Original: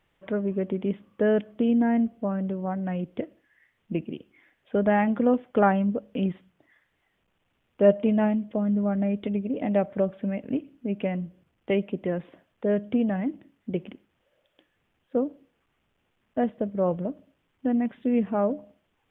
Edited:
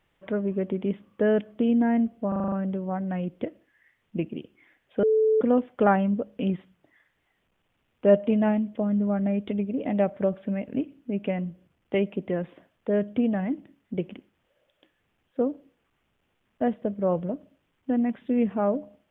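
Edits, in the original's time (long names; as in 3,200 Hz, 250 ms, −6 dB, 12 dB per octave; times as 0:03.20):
0:02.28: stutter 0.04 s, 7 plays
0:04.79–0:05.17: beep over 437 Hz −17.5 dBFS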